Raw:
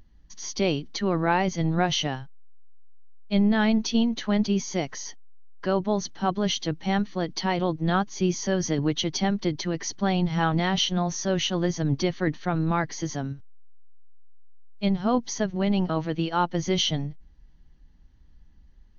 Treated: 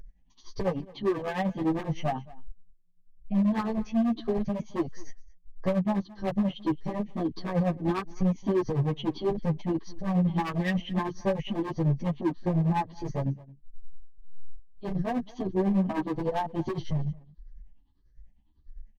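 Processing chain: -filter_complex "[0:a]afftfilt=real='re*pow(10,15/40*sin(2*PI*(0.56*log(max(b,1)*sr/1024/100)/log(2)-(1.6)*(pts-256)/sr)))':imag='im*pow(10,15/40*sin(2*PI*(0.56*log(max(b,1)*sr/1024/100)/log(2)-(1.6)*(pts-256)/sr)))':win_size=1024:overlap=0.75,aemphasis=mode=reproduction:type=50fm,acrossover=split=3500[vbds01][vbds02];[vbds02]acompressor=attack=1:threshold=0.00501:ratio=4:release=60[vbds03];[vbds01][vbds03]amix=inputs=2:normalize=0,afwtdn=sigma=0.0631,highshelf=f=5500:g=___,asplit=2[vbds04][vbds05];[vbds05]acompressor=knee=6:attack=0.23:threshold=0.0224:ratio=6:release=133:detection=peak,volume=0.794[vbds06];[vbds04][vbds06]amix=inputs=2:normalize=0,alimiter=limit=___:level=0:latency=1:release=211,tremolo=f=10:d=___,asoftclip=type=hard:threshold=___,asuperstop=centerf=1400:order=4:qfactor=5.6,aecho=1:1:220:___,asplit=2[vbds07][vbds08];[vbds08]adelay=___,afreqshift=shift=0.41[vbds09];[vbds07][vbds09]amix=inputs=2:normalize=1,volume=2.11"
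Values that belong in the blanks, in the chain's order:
4.5, 0.188, 0.77, 0.0473, 0.0794, 9.4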